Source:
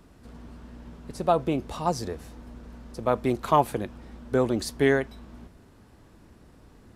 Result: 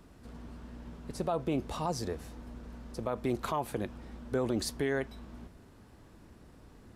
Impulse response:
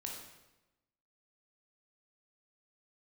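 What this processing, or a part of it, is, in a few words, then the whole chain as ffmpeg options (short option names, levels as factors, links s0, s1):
stacked limiters: -af "alimiter=limit=0.237:level=0:latency=1:release=312,alimiter=limit=0.112:level=0:latency=1:release=37,volume=0.794"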